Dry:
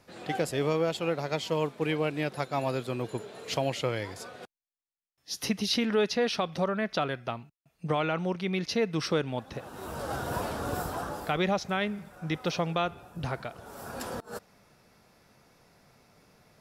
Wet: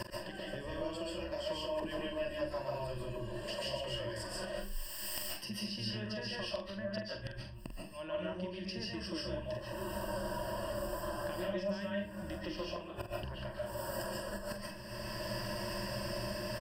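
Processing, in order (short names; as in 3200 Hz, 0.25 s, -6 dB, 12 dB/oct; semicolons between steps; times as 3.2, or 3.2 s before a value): octaver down 1 oct, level -4 dB; recorder AGC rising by 29 dB/s; ripple EQ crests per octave 1.3, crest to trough 18 dB; compressor 3:1, threshold -35 dBFS, peak gain reduction 14 dB; flipped gate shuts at -35 dBFS, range -27 dB; 1.67–4.28 dispersion lows, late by 74 ms, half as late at 320 Hz; flipped gate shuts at -47 dBFS, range -25 dB; doubler 45 ms -8.5 dB; reverb RT60 0.35 s, pre-delay 0.1 s, DRR -3.5 dB; gain +18 dB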